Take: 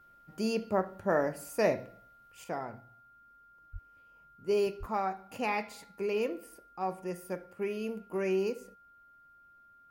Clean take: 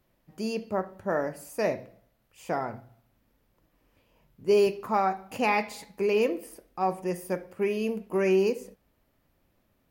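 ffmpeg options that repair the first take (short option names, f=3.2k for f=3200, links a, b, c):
-filter_complex "[0:a]bandreject=f=1.4k:w=30,asplit=3[a][b][c];[a]afade=t=out:st=3.72:d=0.02[d];[b]highpass=f=140:w=0.5412,highpass=f=140:w=1.3066,afade=t=in:st=3.72:d=0.02,afade=t=out:st=3.84:d=0.02[e];[c]afade=t=in:st=3.84:d=0.02[f];[d][e][f]amix=inputs=3:normalize=0,asplit=3[g][h][i];[g]afade=t=out:st=4.79:d=0.02[j];[h]highpass=f=140:w=0.5412,highpass=f=140:w=1.3066,afade=t=in:st=4.79:d=0.02,afade=t=out:st=4.91:d=0.02[k];[i]afade=t=in:st=4.91:d=0.02[l];[j][k][l]amix=inputs=3:normalize=0,asetnsamples=n=441:p=0,asendcmd='2.44 volume volume 7dB',volume=0dB"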